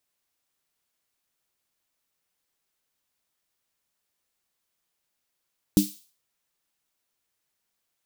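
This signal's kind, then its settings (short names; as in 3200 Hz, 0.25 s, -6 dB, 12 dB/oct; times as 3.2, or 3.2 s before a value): snare drum length 0.44 s, tones 200 Hz, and 300 Hz, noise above 3400 Hz, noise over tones -12 dB, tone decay 0.20 s, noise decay 0.44 s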